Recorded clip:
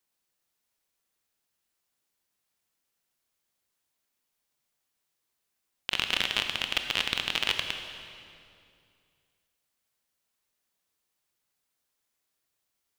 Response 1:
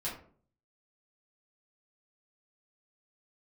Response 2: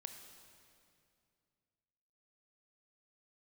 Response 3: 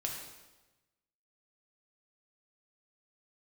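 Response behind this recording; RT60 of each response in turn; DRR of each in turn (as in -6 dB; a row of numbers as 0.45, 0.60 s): 2; 0.50, 2.4, 1.1 s; -7.5, 5.5, -0.5 dB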